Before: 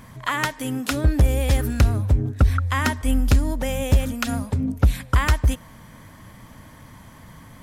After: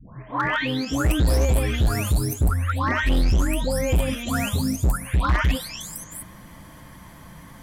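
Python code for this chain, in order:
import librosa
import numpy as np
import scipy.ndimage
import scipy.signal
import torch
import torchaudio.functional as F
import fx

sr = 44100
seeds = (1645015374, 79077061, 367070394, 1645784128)

p1 = fx.spec_delay(x, sr, highs='late', ms=675)
p2 = fx.level_steps(p1, sr, step_db=11)
p3 = p1 + F.gain(torch.from_numpy(p2), -0.5).numpy()
y = np.clip(p3, -10.0 ** (-15.0 / 20.0), 10.0 ** (-15.0 / 20.0))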